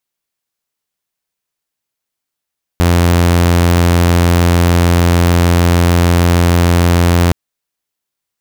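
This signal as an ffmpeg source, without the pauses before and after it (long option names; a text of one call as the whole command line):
ffmpeg -f lavfi -i "aevalsrc='0.562*(2*mod(86.6*t,1)-1)':duration=4.52:sample_rate=44100" out.wav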